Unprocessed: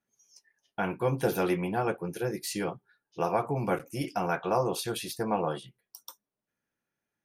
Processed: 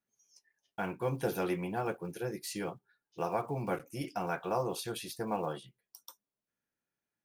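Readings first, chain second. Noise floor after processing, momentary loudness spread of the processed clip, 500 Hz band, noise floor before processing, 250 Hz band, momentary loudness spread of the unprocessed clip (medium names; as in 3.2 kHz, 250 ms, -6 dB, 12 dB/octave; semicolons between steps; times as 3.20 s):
under -85 dBFS, 19 LU, -5.5 dB, under -85 dBFS, -5.5 dB, 19 LU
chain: block-companded coder 7-bit; trim -5.5 dB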